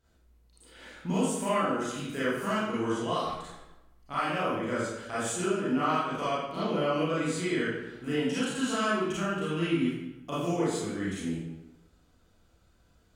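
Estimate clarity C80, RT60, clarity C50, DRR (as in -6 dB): 1.5 dB, 1.0 s, -2.5 dB, -10.5 dB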